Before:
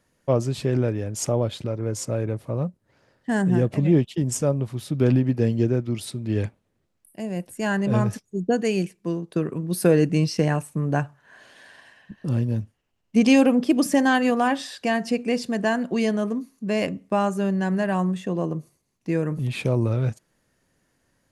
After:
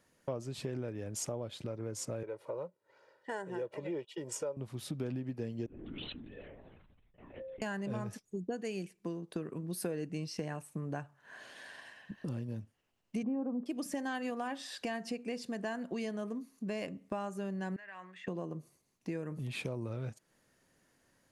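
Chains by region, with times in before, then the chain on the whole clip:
2.23–4.57 HPF 600 Hz + tilt -3 dB/oct + comb 2.1 ms
5.66–7.62 metallic resonator 260 Hz, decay 0.36 s, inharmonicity 0.008 + LPC vocoder at 8 kHz whisper + sustainer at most 22 dB/s
13.23–13.66 Chebyshev low-pass 1100 Hz, order 3 + resonant low shelf 160 Hz -9 dB, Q 3
17.76–18.28 band-pass 2000 Hz, Q 2.8 + compressor 5:1, threshold -39 dBFS
whole clip: low shelf 130 Hz -7.5 dB; compressor 4:1, threshold -36 dBFS; gain -1.5 dB

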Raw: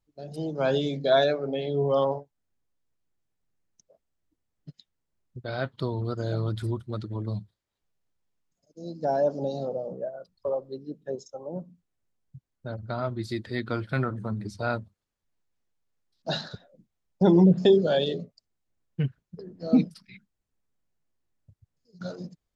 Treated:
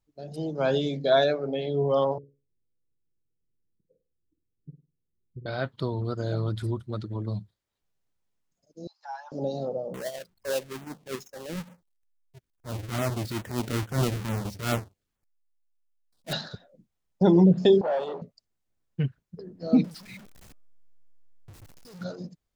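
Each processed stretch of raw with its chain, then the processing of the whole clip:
2.18–5.46 rippled Chebyshev low-pass 510 Hz, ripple 3 dB + flutter echo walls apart 8.6 m, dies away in 0.33 s
8.87–9.32 Chebyshev high-pass 830 Hz, order 6 + high shelf 4800 Hz -9.5 dB
9.94–16.33 half-waves squared off + transient shaper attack -11 dB, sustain -1 dB + LFO notch saw down 2.3 Hz 410–5400 Hz
17.81–18.22 sample leveller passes 3 + band-pass 820 Hz, Q 3.3
19.84–22.04 zero-crossing step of -43.5 dBFS + de-hum 305.1 Hz, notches 5
whole clip: dry

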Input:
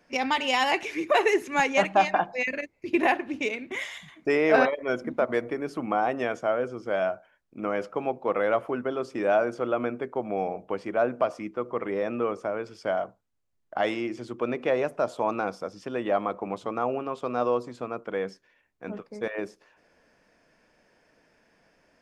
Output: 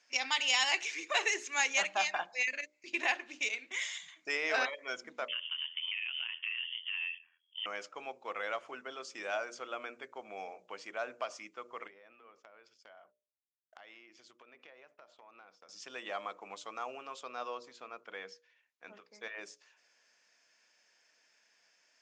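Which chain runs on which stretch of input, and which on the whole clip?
5.28–7.66 ring modulator 42 Hz + compressor 5:1, threshold -32 dBFS + inverted band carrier 3300 Hz
11.87–15.69 expander -38 dBFS + treble ducked by the level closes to 2600 Hz, closed at -25.5 dBFS + compressor, threshold -41 dBFS
17.23–19.41 HPF 110 Hz + air absorption 110 m
whole clip: Chebyshev low-pass 7100 Hz, order 4; differentiator; notches 60/120/180/240/300/360/420/480/540/600 Hz; gain +7 dB

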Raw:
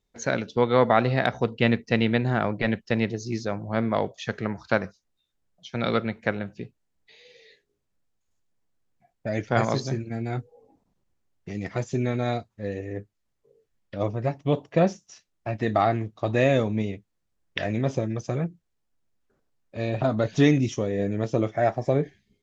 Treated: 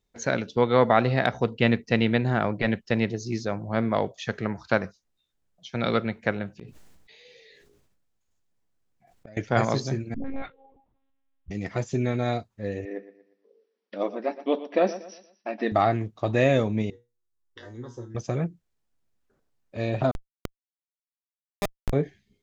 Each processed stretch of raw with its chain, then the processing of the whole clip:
6.59–9.37 flipped gate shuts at -34 dBFS, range -27 dB + hard clip -30.5 dBFS + sustainer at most 33 dB/s
10.14–11.51 dispersion highs, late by 0.115 s, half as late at 450 Hz + monotone LPC vocoder at 8 kHz 270 Hz
12.85–15.72 brick-wall FIR band-pass 200–6000 Hz + feedback echo 0.118 s, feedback 38%, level -14.5 dB
16.9–18.15 fixed phaser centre 650 Hz, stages 6 + resonator 120 Hz, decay 0.25 s, mix 90%
20.11–21.93 monotone LPC vocoder at 8 kHz 200 Hz + Schmitt trigger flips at -18.5 dBFS
whole clip: dry

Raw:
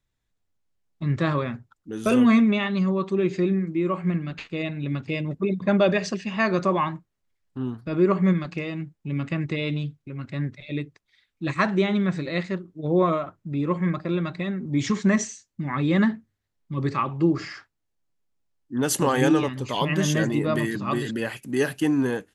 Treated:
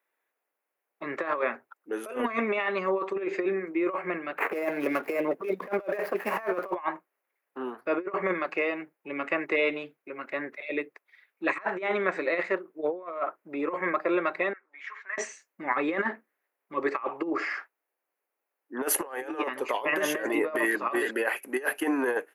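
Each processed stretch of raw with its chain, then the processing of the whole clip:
4.38–6.75 median filter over 15 samples + three-band squash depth 100%
14.53–15.18 compressor 4:1, threshold -20 dBFS + ladder band-pass 1900 Hz, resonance 35%
whole clip: HPF 420 Hz 24 dB/oct; band shelf 5200 Hz -15.5 dB; negative-ratio compressor -31 dBFS, ratio -0.5; gain +4 dB

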